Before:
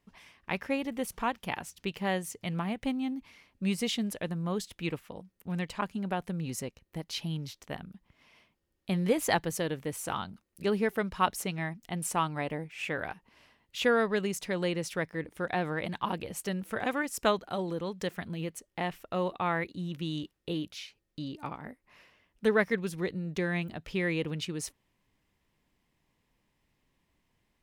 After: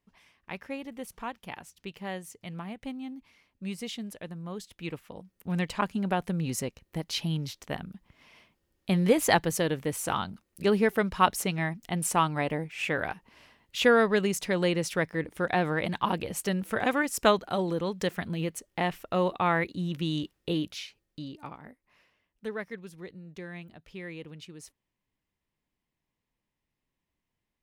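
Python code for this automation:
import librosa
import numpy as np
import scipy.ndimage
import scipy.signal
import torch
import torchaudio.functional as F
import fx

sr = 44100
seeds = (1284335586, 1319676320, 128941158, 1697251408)

y = fx.gain(x, sr, db=fx.line((4.58, -6.0), (5.6, 4.5), (20.71, 4.5), (21.37, -3.0), (22.59, -10.5)))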